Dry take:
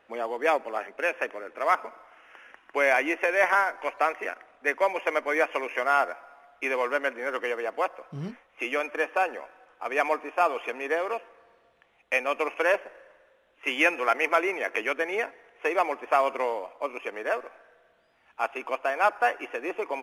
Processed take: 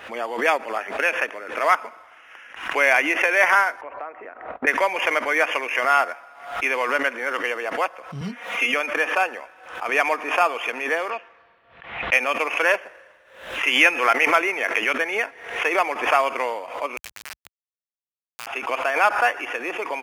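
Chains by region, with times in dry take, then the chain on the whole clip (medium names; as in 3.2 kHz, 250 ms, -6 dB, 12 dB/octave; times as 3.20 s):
3.81–4.67 s: low-pass 1 kHz + compression 2:1, threshold -40 dBFS + gate -58 dBFS, range -36 dB
8.21–8.74 s: high-pass 150 Hz 24 dB/octave + comb 4.2 ms, depth 98%
11.10–12.13 s: low-pass 4.3 kHz + peaking EQ 470 Hz -4 dB 0.75 oct + level-controlled noise filter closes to 2.4 kHz, open at -35 dBFS
16.97–18.47 s: frequency weighting ITU-R 468 + compression 5:1, threshold -42 dBFS + word length cut 6-bit, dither none
whole clip: high-pass 72 Hz; peaking EQ 380 Hz -8.5 dB 2.9 oct; swell ahead of each attack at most 87 dB/s; trim +8.5 dB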